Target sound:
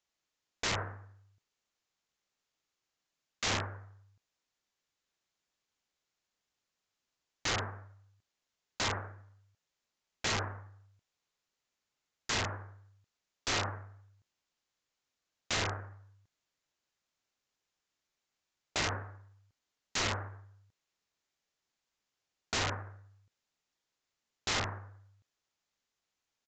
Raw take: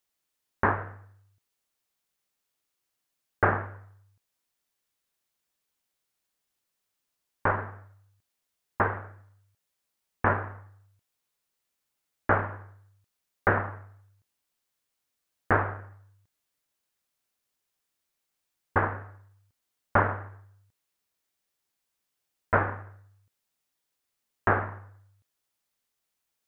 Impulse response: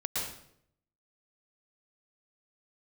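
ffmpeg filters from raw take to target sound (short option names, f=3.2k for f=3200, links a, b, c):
-af "aeval=exprs='(mod(15.8*val(0)+1,2)-1)/15.8':c=same,aresample=16000,aresample=44100,volume=-1dB"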